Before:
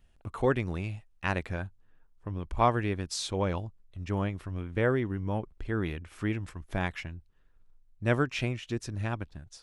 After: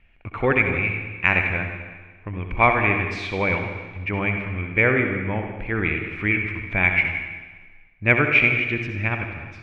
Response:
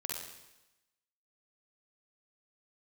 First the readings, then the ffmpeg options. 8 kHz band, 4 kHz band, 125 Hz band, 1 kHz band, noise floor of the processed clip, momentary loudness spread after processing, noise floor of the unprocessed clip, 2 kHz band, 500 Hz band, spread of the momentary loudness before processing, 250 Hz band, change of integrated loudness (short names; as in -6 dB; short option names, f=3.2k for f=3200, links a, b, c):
under -10 dB, +4.5 dB, +5.5 dB, +7.5 dB, -49 dBFS, 14 LU, -63 dBFS, +18.0 dB, +6.0 dB, 13 LU, +6.0 dB, +10.5 dB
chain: -filter_complex "[0:a]lowpass=f=2.3k:t=q:w=11,aeval=exprs='0.531*(cos(1*acos(clip(val(0)/0.531,-1,1)))-cos(1*PI/2))+0.00668*(cos(3*acos(clip(val(0)/0.531,-1,1)))-cos(3*PI/2))':c=same,asplit=2[a][b];[1:a]atrim=start_sample=2205,asetrate=30870,aresample=44100[c];[b][c]afir=irnorm=-1:irlink=0,volume=-2dB[d];[a][d]amix=inputs=2:normalize=0"